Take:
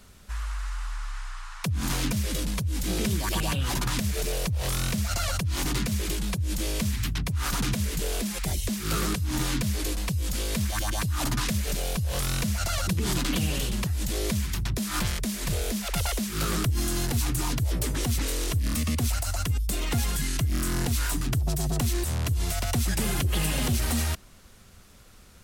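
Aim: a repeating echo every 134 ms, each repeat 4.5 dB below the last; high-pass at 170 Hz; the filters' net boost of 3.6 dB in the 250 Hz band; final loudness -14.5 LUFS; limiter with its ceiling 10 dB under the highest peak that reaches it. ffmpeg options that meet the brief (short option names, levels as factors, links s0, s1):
-af "highpass=170,equalizer=f=250:t=o:g=6.5,alimiter=limit=0.0668:level=0:latency=1,aecho=1:1:134|268|402|536|670|804|938|1072|1206:0.596|0.357|0.214|0.129|0.0772|0.0463|0.0278|0.0167|0.01,volume=6.31"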